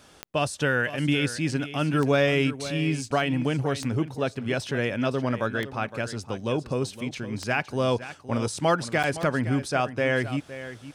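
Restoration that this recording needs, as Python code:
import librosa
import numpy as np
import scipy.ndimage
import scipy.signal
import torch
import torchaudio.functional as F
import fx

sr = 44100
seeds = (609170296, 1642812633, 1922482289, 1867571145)

y = fx.fix_declick_ar(x, sr, threshold=10.0)
y = fx.fix_interpolate(y, sr, at_s=(9.03,), length_ms=7.6)
y = fx.fix_echo_inverse(y, sr, delay_ms=514, level_db=-13.5)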